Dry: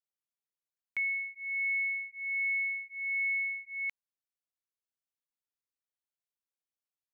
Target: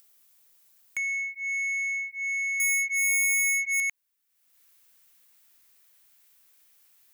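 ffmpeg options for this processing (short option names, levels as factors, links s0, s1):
-af "acompressor=threshold=0.02:ratio=6,asetnsamples=n=441:p=0,asendcmd='2.6 equalizer g 15;3.8 equalizer g 6.5',equalizer=f=2000:t=o:w=1.6:g=2,asoftclip=type=tanh:threshold=0.0266,aemphasis=mode=production:type=50kf,acompressor=mode=upward:threshold=0.00282:ratio=2.5,volume=1.78"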